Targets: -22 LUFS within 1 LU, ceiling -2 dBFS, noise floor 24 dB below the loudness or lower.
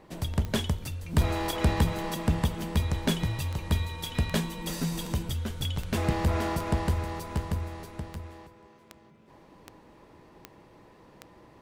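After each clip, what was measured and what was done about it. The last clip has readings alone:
clicks found 15; loudness -30.0 LUFS; peak level -13.5 dBFS; loudness target -22.0 LUFS
-> de-click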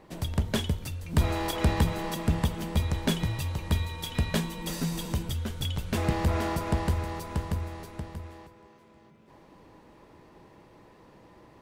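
clicks found 0; loudness -30.0 LUFS; peak level -13.5 dBFS; loudness target -22.0 LUFS
-> trim +8 dB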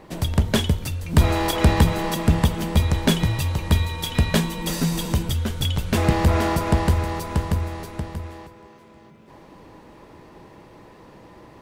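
loudness -22.0 LUFS; peak level -5.5 dBFS; noise floor -48 dBFS

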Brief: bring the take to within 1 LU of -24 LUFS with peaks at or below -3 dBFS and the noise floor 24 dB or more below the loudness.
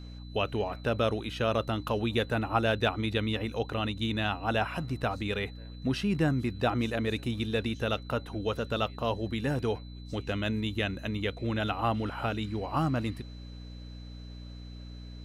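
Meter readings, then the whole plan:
hum 60 Hz; highest harmonic 300 Hz; hum level -41 dBFS; steady tone 4 kHz; tone level -55 dBFS; loudness -31.0 LUFS; peak level -12.0 dBFS; loudness target -24.0 LUFS
-> de-hum 60 Hz, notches 5; band-stop 4 kHz, Q 30; trim +7 dB

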